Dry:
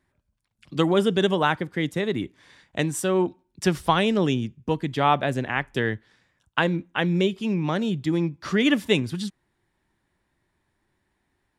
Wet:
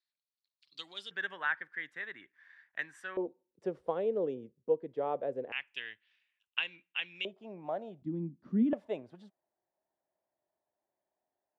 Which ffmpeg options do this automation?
-af "asetnsamples=n=441:p=0,asendcmd='1.11 bandpass f 1700;3.17 bandpass f 490;5.52 bandpass f 2700;7.25 bandpass f 670;8.02 bandpass f 230;8.73 bandpass f 640',bandpass=f=4200:t=q:w=6.3:csg=0"

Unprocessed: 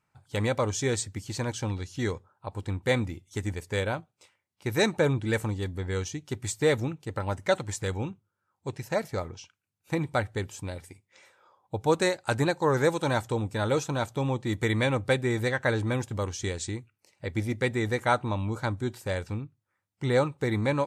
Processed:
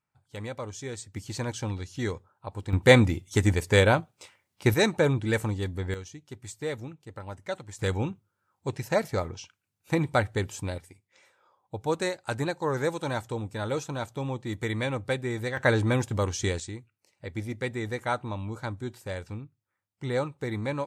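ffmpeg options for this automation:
-af "asetnsamples=n=441:p=0,asendcmd='1.14 volume volume -1dB;2.73 volume volume 9dB;4.74 volume volume 1dB;5.94 volume volume -9dB;7.79 volume volume 3dB;10.78 volume volume -4dB;15.57 volume volume 3.5dB;16.6 volume volume -4.5dB',volume=0.335"

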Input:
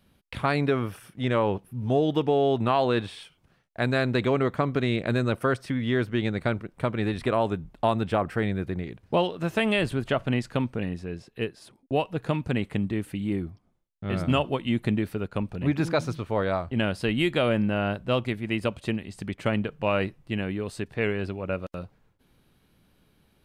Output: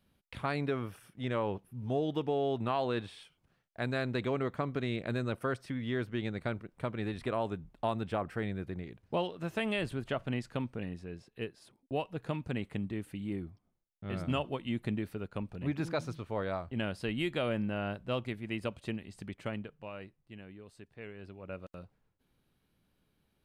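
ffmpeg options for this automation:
-af "volume=0.944,afade=t=out:st=19.21:d=0.69:silence=0.281838,afade=t=in:st=21.13:d=0.53:silence=0.375837"

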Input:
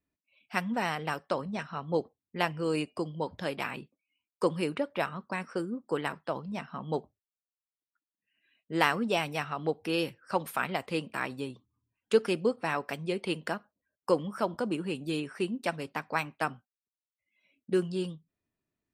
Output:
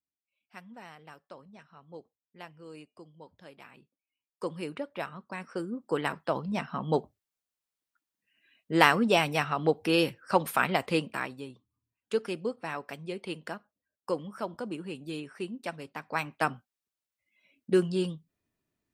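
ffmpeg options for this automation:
-af "volume=4.73,afade=t=in:st=3.72:d=1.03:silence=0.251189,afade=t=in:st=5.32:d=1.21:silence=0.316228,afade=t=out:st=10.92:d=0.43:silence=0.316228,afade=t=in:st=15.98:d=0.5:silence=0.375837"

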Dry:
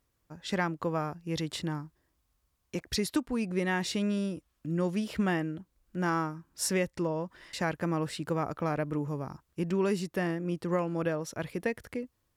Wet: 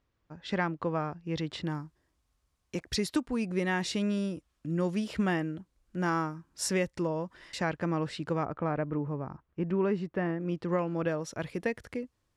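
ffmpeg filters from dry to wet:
-af "asetnsamples=n=441:p=0,asendcmd='1.67 lowpass f 9500;7.6 lowpass f 5400;8.45 lowpass f 2000;10.41 lowpass f 4500;11.08 lowpass f 8600',lowpass=4000"

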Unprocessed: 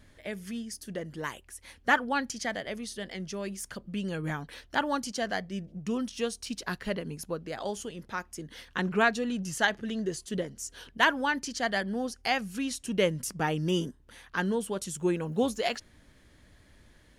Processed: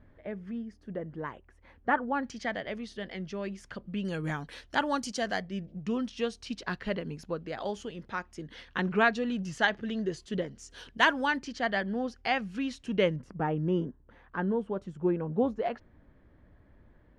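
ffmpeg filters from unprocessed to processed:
-af "asetnsamples=n=441:p=0,asendcmd='2.23 lowpass f 3200;4.05 lowpass f 8400;5.42 lowpass f 4000;10.71 lowpass f 7200;11.37 lowpass f 3200;13.16 lowpass f 1200',lowpass=1300"

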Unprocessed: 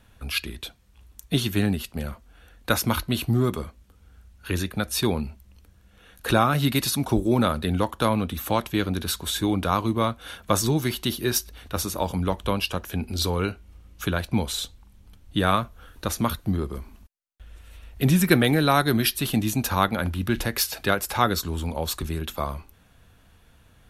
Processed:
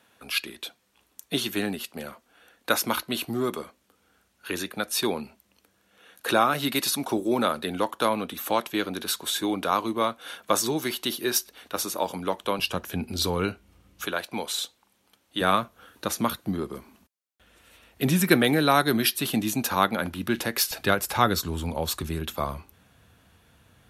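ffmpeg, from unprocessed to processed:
-af "asetnsamples=n=441:p=0,asendcmd='12.59 highpass f 120;14.06 highpass f 410;15.41 highpass f 190;20.71 highpass f 82',highpass=300"

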